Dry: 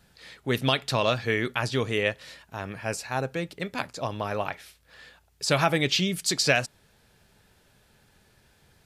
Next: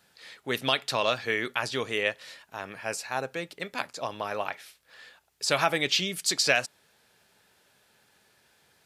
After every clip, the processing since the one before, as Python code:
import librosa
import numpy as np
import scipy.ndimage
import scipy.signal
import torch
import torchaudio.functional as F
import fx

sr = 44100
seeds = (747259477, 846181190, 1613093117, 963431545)

y = fx.highpass(x, sr, hz=490.0, slope=6)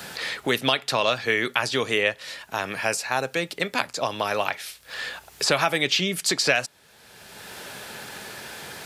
y = fx.band_squash(x, sr, depth_pct=70)
y = y * 10.0 ** (5.5 / 20.0)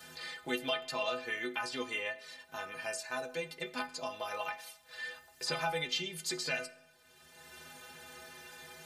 y = fx.stiff_resonator(x, sr, f0_hz=75.0, decay_s=0.51, stiffness=0.03)
y = fx.rev_freeverb(y, sr, rt60_s=0.95, hf_ratio=0.7, predelay_ms=5, drr_db=16.0)
y = y * 10.0 ** (-2.5 / 20.0)